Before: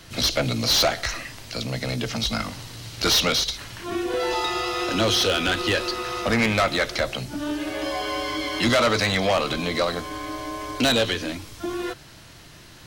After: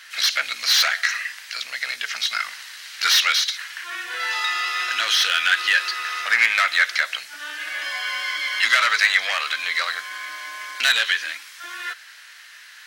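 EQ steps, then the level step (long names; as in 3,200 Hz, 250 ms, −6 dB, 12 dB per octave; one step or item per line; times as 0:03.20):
high-pass with resonance 1,700 Hz, resonance Q 3
+1.0 dB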